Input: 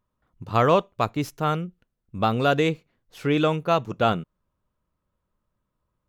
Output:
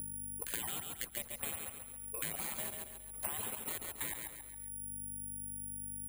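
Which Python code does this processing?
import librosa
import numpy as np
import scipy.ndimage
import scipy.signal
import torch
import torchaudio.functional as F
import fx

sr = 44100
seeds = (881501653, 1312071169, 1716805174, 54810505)

p1 = scipy.signal.sosfilt(scipy.signal.butter(4, 57.0, 'highpass', fs=sr, output='sos'), x)
p2 = fx.dereverb_blind(p1, sr, rt60_s=1.3)
p3 = fx.spec_gate(p2, sr, threshold_db=-30, keep='weak')
p4 = fx.lowpass(p3, sr, hz=1200.0, slope=6)
p5 = fx.low_shelf(p4, sr, hz=370.0, db=10.0)
p6 = fx.hum_notches(p5, sr, base_hz=60, count=5)
p7 = fx.level_steps(p6, sr, step_db=14)
p8 = fx.add_hum(p7, sr, base_hz=50, snr_db=16)
p9 = p8 + fx.echo_feedback(p8, sr, ms=137, feedback_pct=28, wet_db=-6.0, dry=0)
p10 = (np.kron(scipy.signal.resample_poly(p9, 1, 4), np.eye(4)[0]) * 4)[:len(p9)]
p11 = fx.band_squash(p10, sr, depth_pct=100)
y = p11 * librosa.db_to_amplitude(10.5)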